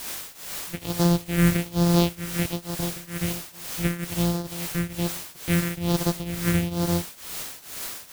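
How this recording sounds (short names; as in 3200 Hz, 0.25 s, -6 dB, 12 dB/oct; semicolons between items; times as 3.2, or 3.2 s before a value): a buzz of ramps at a fixed pitch in blocks of 256 samples; phasing stages 4, 1.2 Hz, lowest notch 800–2300 Hz; a quantiser's noise floor 6-bit, dither triangular; tremolo triangle 2.2 Hz, depth 90%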